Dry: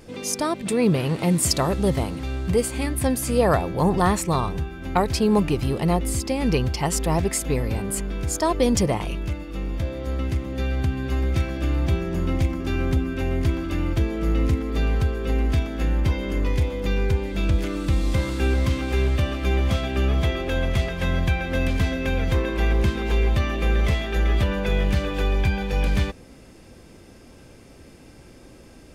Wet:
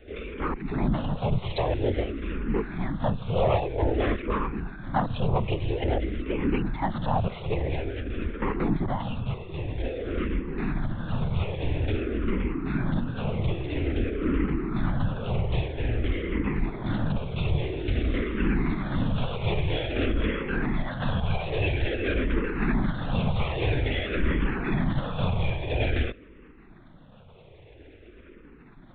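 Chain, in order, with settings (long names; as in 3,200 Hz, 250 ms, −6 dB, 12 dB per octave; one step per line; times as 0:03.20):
asymmetric clip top −22 dBFS
linear-prediction vocoder at 8 kHz whisper
frequency shifter mixed with the dry sound −0.5 Hz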